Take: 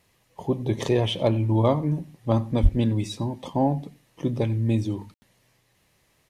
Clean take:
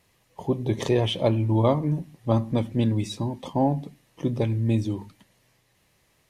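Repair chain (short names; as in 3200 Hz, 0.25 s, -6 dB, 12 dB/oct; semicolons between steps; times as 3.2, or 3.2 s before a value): clip repair -8 dBFS; 2.62–2.74 HPF 140 Hz 24 dB/oct; room tone fill 5.14–5.22; inverse comb 91 ms -22.5 dB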